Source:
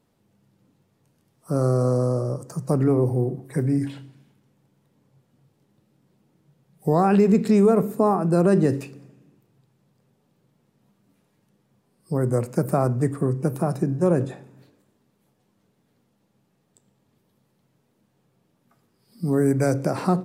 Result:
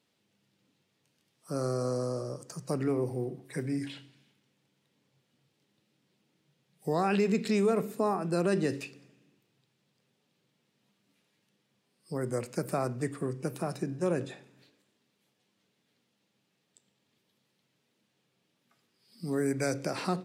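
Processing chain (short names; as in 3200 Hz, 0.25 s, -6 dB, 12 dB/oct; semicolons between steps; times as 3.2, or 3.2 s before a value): weighting filter D; gain -8.5 dB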